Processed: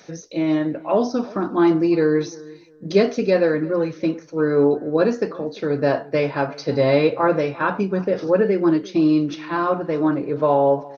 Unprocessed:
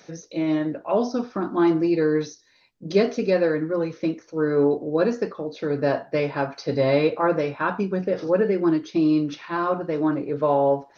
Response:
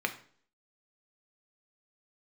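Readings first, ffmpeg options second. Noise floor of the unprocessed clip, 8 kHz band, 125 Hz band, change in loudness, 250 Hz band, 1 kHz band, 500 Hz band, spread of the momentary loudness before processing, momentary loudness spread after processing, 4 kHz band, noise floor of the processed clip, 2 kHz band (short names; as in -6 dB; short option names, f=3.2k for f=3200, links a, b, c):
-57 dBFS, n/a, +3.0 dB, +3.0 dB, +3.0 dB, +3.0 dB, +3.0 dB, 7 LU, 7 LU, +3.0 dB, -45 dBFS, +3.0 dB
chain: -filter_complex "[0:a]asplit=2[a][b];[b]adelay=347,lowpass=f=1.9k:p=1,volume=-20.5dB,asplit=2[c][d];[d]adelay=347,lowpass=f=1.9k:p=1,volume=0.24[e];[a][c][e]amix=inputs=3:normalize=0,volume=3dB"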